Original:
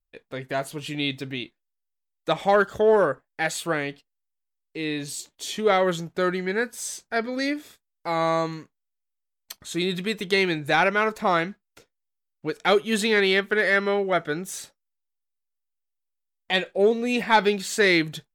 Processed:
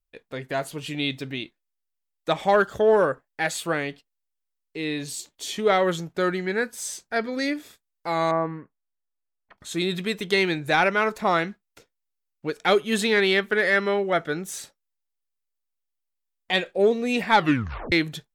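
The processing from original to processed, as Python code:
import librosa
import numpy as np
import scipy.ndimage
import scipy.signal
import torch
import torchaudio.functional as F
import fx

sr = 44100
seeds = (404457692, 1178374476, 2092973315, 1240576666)

y = fx.lowpass(x, sr, hz=1800.0, slope=24, at=(8.31, 9.58))
y = fx.edit(y, sr, fx.tape_stop(start_s=17.35, length_s=0.57), tone=tone)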